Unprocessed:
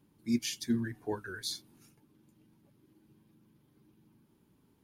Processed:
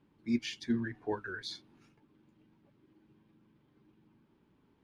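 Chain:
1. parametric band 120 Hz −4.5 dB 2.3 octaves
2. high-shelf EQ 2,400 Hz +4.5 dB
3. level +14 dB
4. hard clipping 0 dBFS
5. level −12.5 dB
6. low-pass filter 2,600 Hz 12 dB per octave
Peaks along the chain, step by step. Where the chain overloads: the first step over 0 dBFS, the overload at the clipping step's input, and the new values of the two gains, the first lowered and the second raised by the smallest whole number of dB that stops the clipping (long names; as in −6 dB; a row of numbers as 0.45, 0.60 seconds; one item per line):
−21.5, −19.5, −5.5, −5.5, −18.0, −20.5 dBFS
no step passes full scale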